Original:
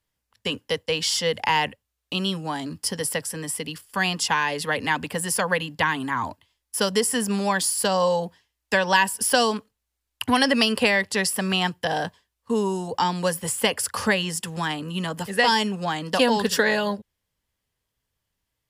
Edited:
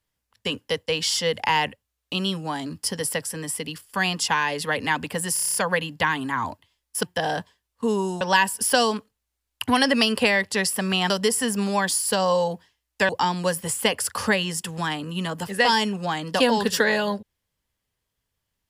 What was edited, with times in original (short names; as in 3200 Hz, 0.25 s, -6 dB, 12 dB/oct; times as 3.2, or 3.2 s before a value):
5.34 stutter 0.03 s, 8 plays
6.82–8.81 swap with 11.7–12.88